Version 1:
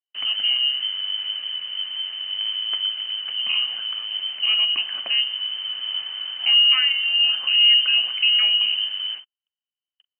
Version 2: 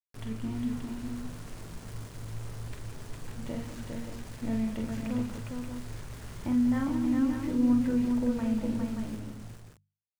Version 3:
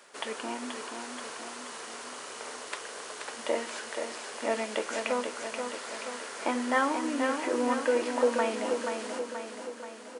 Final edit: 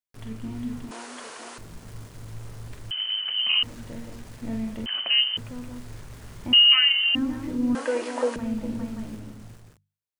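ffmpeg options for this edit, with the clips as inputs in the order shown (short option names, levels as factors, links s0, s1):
-filter_complex "[2:a]asplit=2[s0][s1];[0:a]asplit=3[s2][s3][s4];[1:a]asplit=6[s5][s6][s7][s8][s9][s10];[s5]atrim=end=0.912[s11];[s0]atrim=start=0.908:end=1.582[s12];[s6]atrim=start=1.578:end=2.912[s13];[s2]atrim=start=2.908:end=3.632[s14];[s7]atrim=start=3.628:end=4.862[s15];[s3]atrim=start=4.858:end=5.372[s16];[s8]atrim=start=5.368:end=6.532[s17];[s4]atrim=start=6.528:end=7.152[s18];[s9]atrim=start=7.148:end=7.752[s19];[s1]atrim=start=7.748:end=8.362[s20];[s10]atrim=start=8.358[s21];[s11][s12]acrossfade=d=0.004:c1=hsin:c2=hsin[s22];[s22][s13]acrossfade=d=0.004:c1=hsin:c2=hsin[s23];[s23][s14]acrossfade=d=0.004:c1=hsin:c2=hsin[s24];[s24][s15]acrossfade=d=0.004:c1=hsin:c2=hsin[s25];[s25][s16]acrossfade=d=0.004:c1=hsin:c2=hsin[s26];[s26][s17]acrossfade=d=0.004:c1=hsin:c2=hsin[s27];[s27][s18]acrossfade=d=0.004:c1=hsin:c2=hsin[s28];[s28][s19]acrossfade=d=0.004:c1=hsin:c2=hsin[s29];[s29][s20]acrossfade=d=0.004:c1=hsin:c2=hsin[s30];[s30][s21]acrossfade=d=0.004:c1=hsin:c2=hsin"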